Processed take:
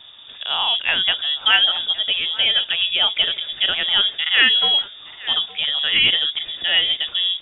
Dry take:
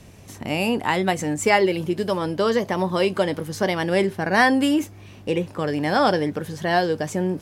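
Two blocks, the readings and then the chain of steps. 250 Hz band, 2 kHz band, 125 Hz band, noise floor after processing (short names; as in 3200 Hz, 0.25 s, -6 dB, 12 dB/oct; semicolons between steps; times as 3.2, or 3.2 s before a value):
-21.5 dB, +4.0 dB, under -15 dB, -40 dBFS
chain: thinning echo 0.864 s, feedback 28%, high-pass 1100 Hz, level -16 dB; inverted band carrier 3600 Hz; gain +2 dB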